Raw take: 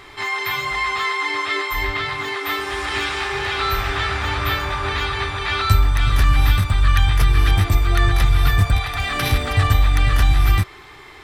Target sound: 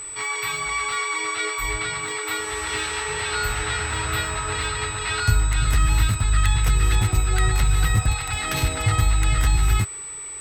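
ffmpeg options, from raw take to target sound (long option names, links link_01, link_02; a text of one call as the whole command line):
ffmpeg -i in.wav -af "asetrate=47628,aresample=44100,aeval=exprs='val(0)+0.0398*sin(2*PI*8000*n/s)':channel_layout=same,volume=-4dB" out.wav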